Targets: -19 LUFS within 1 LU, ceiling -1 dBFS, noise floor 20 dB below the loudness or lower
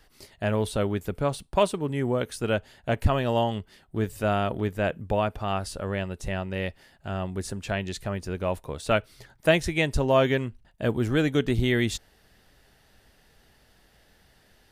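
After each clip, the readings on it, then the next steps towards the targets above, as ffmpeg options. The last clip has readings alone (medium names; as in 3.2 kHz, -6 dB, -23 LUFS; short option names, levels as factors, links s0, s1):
loudness -27.5 LUFS; peak level -7.5 dBFS; loudness target -19.0 LUFS
-> -af "volume=2.66,alimiter=limit=0.891:level=0:latency=1"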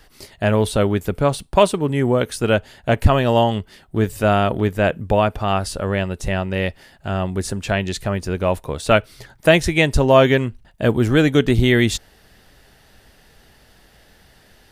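loudness -19.0 LUFS; peak level -1.0 dBFS; noise floor -53 dBFS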